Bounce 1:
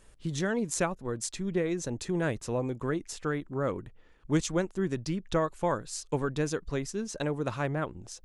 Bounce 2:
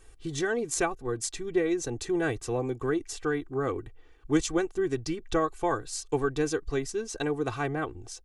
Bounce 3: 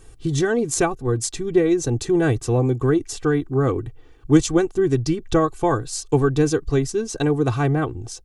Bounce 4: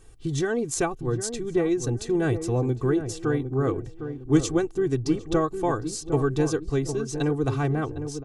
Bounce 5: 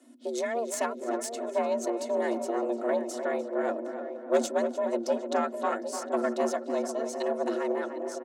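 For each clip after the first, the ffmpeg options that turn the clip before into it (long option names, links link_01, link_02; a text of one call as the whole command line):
ffmpeg -i in.wav -af "aecho=1:1:2.6:0.8" out.wav
ffmpeg -i in.wav -af "equalizer=frequency=125:width_type=o:width=1:gain=9,equalizer=frequency=250:width_type=o:width=1:gain=3,equalizer=frequency=2000:width_type=o:width=1:gain=-4,volume=7dB" out.wav
ffmpeg -i in.wav -filter_complex "[0:a]asplit=2[link_01][link_02];[link_02]adelay=757,lowpass=frequency=840:poles=1,volume=-8dB,asplit=2[link_03][link_04];[link_04]adelay=757,lowpass=frequency=840:poles=1,volume=0.37,asplit=2[link_05][link_06];[link_06]adelay=757,lowpass=frequency=840:poles=1,volume=0.37,asplit=2[link_07][link_08];[link_08]adelay=757,lowpass=frequency=840:poles=1,volume=0.37[link_09];[link_01][link_03][link_05][link_07][link_09]amix=inputs=5:normalize=0,volume=-5.5dB" out.wav
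ffmpeg -i in.wav -filter_complex "[0:a]aeval=exprs='0.447*(cos(1*acos(clip(val(0)/0.447,-1,1)))-cos(1*PI/2))+0.0501*(cos(6*acos(clip(val(0)/0.447,-1,1)))-cos(6*PI/2))':channel_layout=same,afreqshift=230,asplit=2[link_01][link_02];[link_02]adelay=298,lowpass=frequency=2000:poles=1,volume=-8dB,asplit=2[link_03][link_04];[link_04]adelay=298,lowpass=frequency=2000:poles=1,volume=0.49,asplit=2[link_05][link_06];[link_06]adelay=298,lowpass=frequency=2000:poles=1,volume=0.49,asplit=2[link_07][link_08];[link_08]adelay=298,lowpass=frequency=2000:poles=1,volume=0.49,asplit=2[link_09][link_10];[link_10]adelay=298,lowpass=frequency=2000:poles=1,volume=0.49,asplit=2[link_11][link_12];[link_12]adelay=298,lowpass=frequency=2000:poles=1,volume=0.49[link_13];[link_01][link_03][link_05][link_07][link_09][link_11][link_13]amix=inputs=7:normalize=0,volume=-5.5dB" out.wav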